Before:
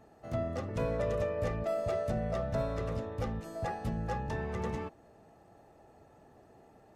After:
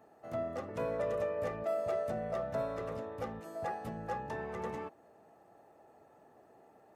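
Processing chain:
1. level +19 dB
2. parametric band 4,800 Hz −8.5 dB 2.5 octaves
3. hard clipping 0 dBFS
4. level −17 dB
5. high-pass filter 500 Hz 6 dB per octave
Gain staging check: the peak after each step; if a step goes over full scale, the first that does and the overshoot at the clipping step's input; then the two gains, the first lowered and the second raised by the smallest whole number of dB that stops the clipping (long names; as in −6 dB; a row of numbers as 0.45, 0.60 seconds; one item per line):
−2.0, −2.5, −2.5, −19.5, −24.5 dBFS
no step passes full scale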